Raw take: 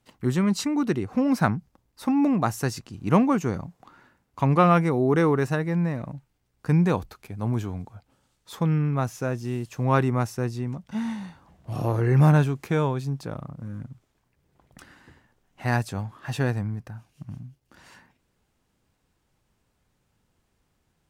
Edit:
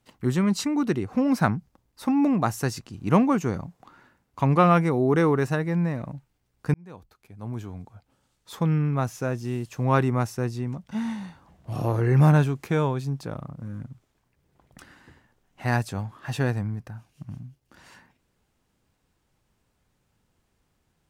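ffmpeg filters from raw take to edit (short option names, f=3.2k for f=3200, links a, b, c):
-filter_complex "[0:a]asplit=2[a][b];[a]atrim=end=6.74,asetpts=PTS-STARTPTS,afade=t=out:st=6.736:d=0.004:c=hsin[c];[b]atrim=start=6.74,asetpts=PTS-STARTPTS,afade=t=in:d=1.82[d];[c][d]concat=n=2:v=0:a=1"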